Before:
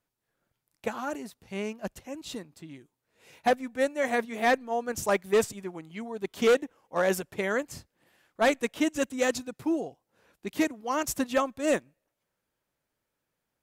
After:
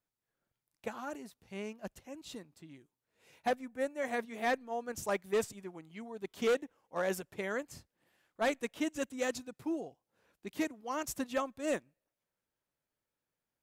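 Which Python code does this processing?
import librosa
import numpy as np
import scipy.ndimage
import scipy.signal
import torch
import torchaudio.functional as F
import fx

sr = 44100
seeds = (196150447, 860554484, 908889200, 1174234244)

y = fx.peak_eq(x, sr, hz=4100.0, db=fx.line((3.64, -10.0), (4.09, -1.5)), octaves=1.5, at=(3.64, 4.09), fade=0.02)
y = y * 10.0 ** (-8.0 / 20.0)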